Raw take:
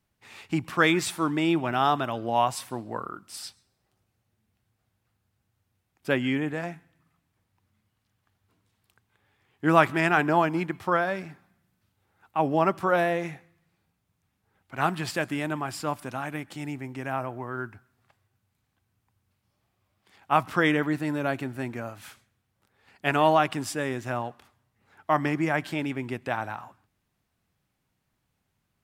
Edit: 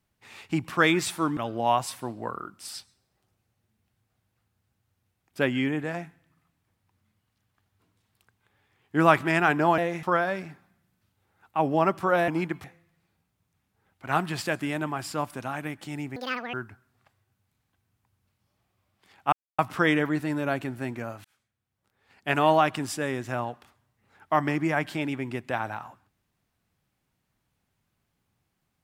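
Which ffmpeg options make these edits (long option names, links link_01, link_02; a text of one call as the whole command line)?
ffmpeg -i in.wav -filter_complex "[0:a]asplit=10[link_01][link_02][link_03][link_04][link_05][link_06][link_07][link_08][link_09][link_10];[link_01]atrim=end=1.372[link_11];[link_02]atrim=start=2.058:end=10.472[link_12];[link_03]atrim=start=13.078:end=13.332[link_13];[link_04]atrim=start=10.828:end=13.082[link_14];[link_05]atrim=start=10.468:end=10.832[link_15];[link_06]atrim=start=13.328:end=16.854[link_16];[link_07]atrim=start=16.85:end=17.57,asetpts=PTS-STARTPTS,asetrate=84672,aresample=44100[link_17];[link_08]atrim=start=17.566:end=20.36,asetpts=PTS-STARTPTS,afade=type=out:start_time=2.79:duration=0.004:curve=hsin,apad=pad_dur=0.26[link_18];[link_09]atrim=start=20.36:end=22.02,asetpts=PTS-STARTPTS,afade=type=in:duration=0.004:curve=hsin,afade=type=out:start_time=1.656:duration=0.004:curve=hsin[link_19];[link_10]atrim=start=22.02,asetpts=PTS-STARTPTS,afade=type=in:duration=1.12[link_20];[link_11][link_12]acrossfade=duration=0.004:curve1=hsin:curve2=hsin[link_21];[link_21][link_13]acrossfade=duration=0.004:curve1=hsin:curve2=hsin[link_22];[link_22][link_14]acrossfade=duration=0.004:curve1=hsin:curve2=hsin[link_23];[link_23][link_15]acrossfade=duration=0.004:curve1=hsin:curve2=hsin[link_24];[link_24][link_16]acrossfade=duration=0.004:curve1=hsin:curve2=hsin[link_25];[link_25][link_17]acrossfade=duration=0.004:curve1=hsin:curve2=hsin[link_26];[link_18][link_19][link_20]concat=n=3:v=0:a=1[link_27];[link_26][link_27]acrossfade=duration=0.004:curve1=hsin:curve2=hsin" out.wav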